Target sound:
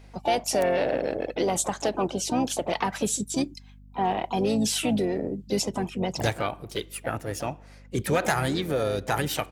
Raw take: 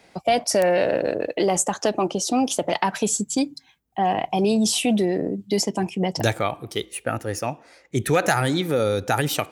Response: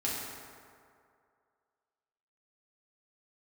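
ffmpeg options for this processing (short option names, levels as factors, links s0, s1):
-filter_complex "[0:a]asplit=4[s0][s1][s2][s3];[s1]asetrate=22050,aresample=44100,atempo=2,volume=0.178[s4];[s2]asetrate=33038,aresample=44100,atempo=1.33484,volume=0.158[s5];[s3]asetrate=55563,aresample=44100,atempo=0.793701,volume=0.316[s6];[s0][s4][s5][s6]amix=inputs=4:normalize=0,aeval=exprs='val(0)+0.00708*(sin(2*PI*50*n/s)+sin(2*PI*2*50*n/s)/2+sin(2*PI*3*50*n/s)/3+sin(2*PI*4*50*n/s)/4+sin(2*PI*5*50*n/s)/5)':c=same,volume=0.562"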